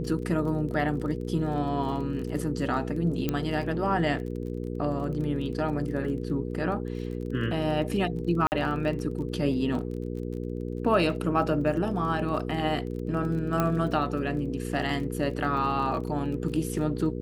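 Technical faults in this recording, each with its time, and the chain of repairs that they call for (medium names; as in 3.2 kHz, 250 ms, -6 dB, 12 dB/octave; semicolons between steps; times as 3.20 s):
crackle 27 per s -36 dBFS
hum 60 Hz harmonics 8 -33 dBFS
3.29 s: pop -13 dBFS
8.47–8.52 s: dropout 49 ms
13.60 s: pop -12 dBFS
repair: de-click; de-hum 60 Hz, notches 8; interpolate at 8.47 s, 49 ms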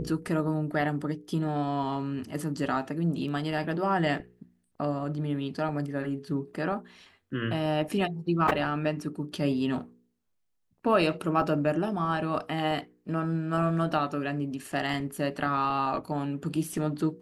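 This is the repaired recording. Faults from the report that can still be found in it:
3.29 s: pop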